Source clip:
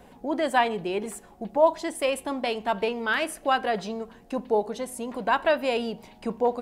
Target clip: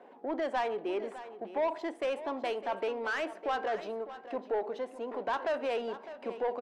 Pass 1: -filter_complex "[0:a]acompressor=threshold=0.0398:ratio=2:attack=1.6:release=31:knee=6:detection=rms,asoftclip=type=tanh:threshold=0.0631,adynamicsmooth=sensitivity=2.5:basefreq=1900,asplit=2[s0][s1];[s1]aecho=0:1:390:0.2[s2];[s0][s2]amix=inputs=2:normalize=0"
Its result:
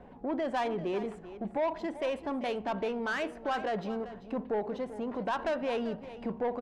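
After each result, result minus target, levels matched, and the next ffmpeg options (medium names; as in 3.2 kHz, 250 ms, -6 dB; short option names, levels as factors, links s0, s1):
echo 215 ms early; 250 Hz band +5.5 dB
-filter_complex "[0:a]acompressor=threshold=0.0398:ratio=2:attack=1.6:release=31:knee=6:detection=rms,asoftclip=type=tanh:threshold=0.0631,adynamicsmooth=sensitivity=2.5:basefreq=1900,asplit=2[s0][s1];[s1]aecho=0:1:605:0.2[s2];[s0][s2]amix=inputs=2:normalize=0"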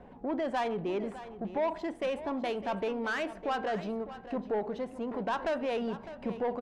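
250 Hz band +5.5 dB
-filter_complex "[0:a]acompressor=threshold=0.0398:ratio=2:attack=1.6:release=31:knee=6:detection=rms,highpass=f=310:w=0.5412,highpass=f=310:w=1.3066,asoftclip=type=tanh:threshold=0.0631,adynamicsmooth=sensitivity=2.5:basefreq=1900,asplit=2[s0][s1];[s1]aecho=0:1:605:0.2[s2];[s0][s2]amix=inputs=2:normalize=0"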